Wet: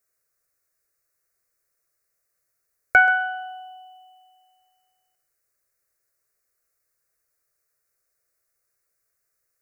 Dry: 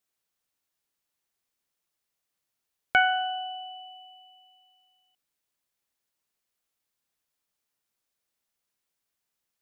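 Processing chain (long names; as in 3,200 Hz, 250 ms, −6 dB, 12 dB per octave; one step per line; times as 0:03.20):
parametric band 2,800 Hz −4.5 dB 0.5 octaves
phaser with its sweep stopped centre 890 Hz, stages 6
on a send: feedback echo with a high-pass in the loop 131 ms, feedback 16%, level −13 dB
on the sum: level +8.5 dB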